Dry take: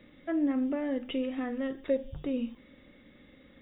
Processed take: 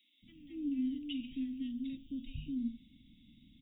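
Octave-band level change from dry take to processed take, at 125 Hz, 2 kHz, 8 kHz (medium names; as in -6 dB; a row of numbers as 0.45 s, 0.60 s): -1.5 dB, -15.0 dB, no reading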